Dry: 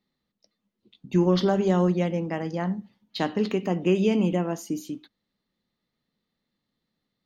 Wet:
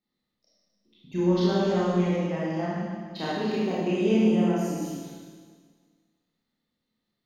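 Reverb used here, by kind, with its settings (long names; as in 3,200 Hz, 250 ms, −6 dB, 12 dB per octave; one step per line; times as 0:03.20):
four-comb reverb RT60 1.7 s, combs from 25 ms, DRR −9 dB
level −10 dB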